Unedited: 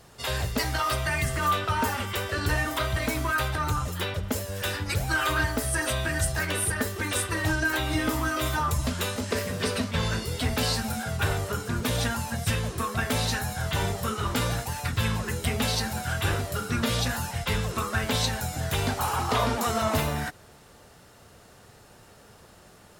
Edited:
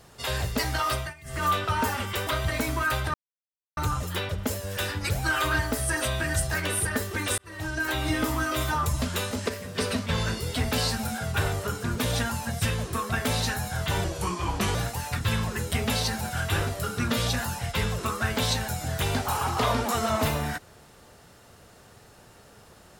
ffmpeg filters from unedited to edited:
-filter_complex "[0:a]asplit=10[a][b][c][d][e][f][g][h][i][j];[a]atrim=end=1.14,asetpts=PTS-STARTPTS,afade=t=out:st=0.88:d=0.26:c=qsin:silence=0.0794328[k];[b]atrim=start=1.14:end=1.24,asetpts=PTS-STARTPTS,volume=-22dB[l];[c]atrim=start=1.24:end=2.272,asetpts=PTS-STARTPTS,afade=t=in:d=0.26:c=qsin:silence=0.0794328[m];[d]atrim=start=2.748:end=3.62,asetpts=PTS-STARTPTS,afade=t=out:st=0.868:d=0.004:c=hsin,apad=pad_dur=0.63[n];[e]atrim=start=3.62:end=7.23,asetpts=PTS-STARTPTS,afade=t=in:d=0.004:c=hsin,afade=t=out:st=3.606:d=0.004:c=hsin[o];[f]atrim=start=7.23:end=9.342,asetpts=PTS-STARTPTS,afade=t=in:d=0.61[p];[g]atrim=start=9.338:end=9.632,asetpts=PTS-STARTPTS,volume=-6.5dB[q];[h]atrim=start=9.628:end=13.894[r];[i]atrim=start=13.89:end=14.47,asetpts=PTS-STARTPTS,asetrate=36162,aresample=44100[s];[j]atrim=start=14.466[t];[k][l][m]concat=n=3:v=0:a=1[u];[n][o][p]concat=n=3:v=0:a=1[v];[u][v]acrossfade=d=0.004:c1=hsin:c2=hsin[w];[w][q]acrossfade=d=0.004:c1=hsin:c2=hsin[x];[x][r]acrossfade=d=0.004:c1=hsin:c2=hsin[y];[y][s]acrossfade=d=0.004:c1=hsin:c2=hsin[z];[z][t]acrossfade=d=0.004:c1=hsin:c2=hsin"

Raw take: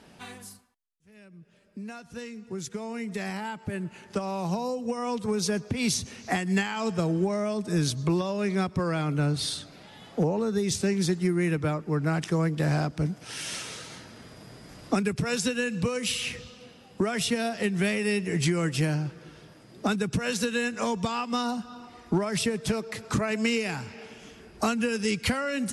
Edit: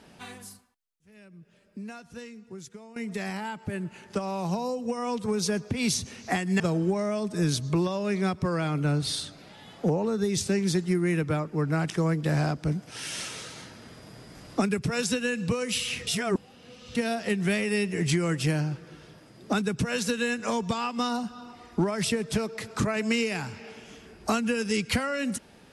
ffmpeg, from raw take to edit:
-filter_complex "[0:a]asplit=5[a][b][c][d][e];[a]atrim=end=2.96,asetpts=PTS-STARTPTS,afade=t=out:st=1.8:d=1.16:silence=0.188365[f];[b]atrim=start=2.96:end=6.602,asetpts=PTS-STARTPTS,afade=t=in:d=0.004:c=hsin:silence=0.188365[g];[c]atrim=start=6.938:end=16.412[h];[d]atrim=start=16.408:end=17.292,asetpts=PTS-STARTPTS,areverse[i];[e]atrim=start=17.288[j];[f][g]concat=n=2:v=0:a=1[k];[k][h]acrossfade=d=0.004:c1=hsin:c2=hsin[l];[l][i]acrossfade=d=0.004:c1=hsin:c2=hsin[m];[m][j]acrossfade=d=0.004:c1=hsin:c2=hsin"

